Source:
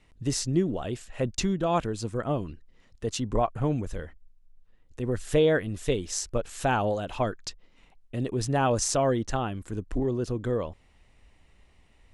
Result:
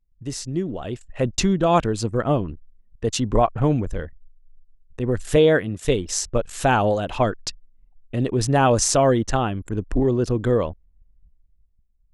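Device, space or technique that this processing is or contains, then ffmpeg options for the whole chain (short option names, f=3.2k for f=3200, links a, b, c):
voice memo with heavy noise removal: -filter_complex "[0:a]asettb=1/sr,asplit=3[a][b][c];[a]atrim=end=5.364[d];[b]atrim=start=5.36:end=5.85,asetpts=PTS-STARTPTS,afade=t=in:d=0.004:c=qsin,afade=t=out:st=0.486:d=0.004:c=qsin,highpass=95[e];[c]atrim=start=5.846[f];[d][e]acrossfade=d=0.004:c1=hsin:c2=qsin[g];[g][f]acrossfade=d=0.004:c1=qsin:c2=hsin,anlmdn=0.0631,dynaudnorm=f=120:g=17:m=11.5dB,volume=-2.5dB"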